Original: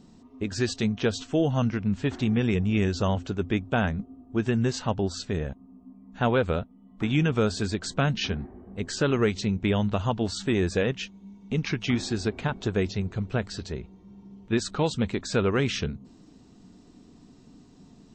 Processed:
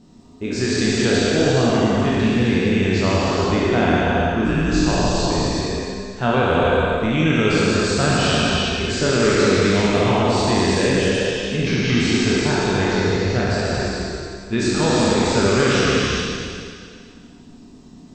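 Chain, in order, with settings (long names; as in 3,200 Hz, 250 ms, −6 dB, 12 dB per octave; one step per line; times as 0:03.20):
peak hold with a decay on every bin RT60 2.20 s
0:04.44–0:05.33: frequency shifter −74 Hz
reverb whose tail is shaped and stops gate 470 ms flat, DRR −3.5 dB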